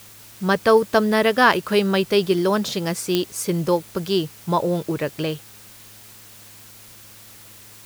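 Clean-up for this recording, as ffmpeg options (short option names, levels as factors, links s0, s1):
-af "adeclick=t=4,bandreject=f=107:t=h:w=4,bandreject=f=214:t=h:w=4,bandreject=f=321:t=h:w=4,bandreject=f=428:t=h:w=4,bandreject=f=535:t=h:w=4,afwtdn=0.0056"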